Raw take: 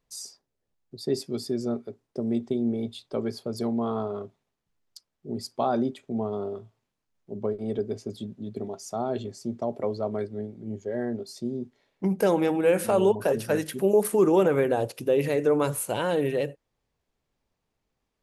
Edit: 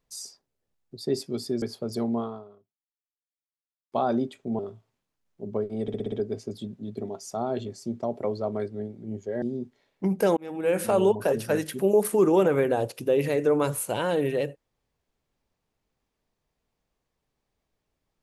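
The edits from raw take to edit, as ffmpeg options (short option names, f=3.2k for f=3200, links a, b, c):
-filter_complex "[0:a]asplit=11[a][b][c][d][e][f][g][h][i][j][k];[a]atrim=end=1.622[l];[b]atrim=start=3.258:end=5.56,asetpts=PTS-STARTPTS,afade=t=out:st=0.562:d=1.74:c=exp[m];[c]atrim=start=5.56:end=6.232,asetpts=PTS-STARTPTS,afade=t=in:d=0.004:c=hsin[n];[d]atrim=start=6.478:end=7.772[o];[e]atrim=start=7.708:end=7.772[p];[f]atrim=start=7.708:end=7.772[q];[g]atrim=start=7.708:end=7.772[r];[h]atrim=start=7.708:end=7.772[s];[i]atrim=start=7.708:end=11.012[t];[j]atrim=start=11.418:end=12.37,asetpts=PTS-STARTPTS,afade=t=out:st=0.948:d=0.004:c=hsin[u];[k]atrim=start=12.37,asetpts=PTS-STARTPTS,afade=t=in:d=0.46[v];[m][n]concat=n=2:v=0:a=1[w];[l][w]acrossfade=d=0.004:c1=hsin:c2=hsin[x];[x][o]acrossfade=d=0.004:c1=hsin:c2=hsin[y];[y][p]acrossfade=d=0.004:c1=hsin:c2=hsin[z];[z][q]acrossfade=d=0.004:c1=hsin:c2=hsin[aa];[aa][r]acrossfade=d=0.004:c1=hsin:c2=hsin[ab];[ab][s]acrossfade=d=0.004:c1=hsin:c2=hsin[ac];[ac][t]acrossfade=d=0.004:c1=hsin:c2=hsin[ad];[u][v]concat=n=2:v=0:a=1[ae];[ad][ae]acrossfade=d=0.004:c1=hsin:c2=hsin"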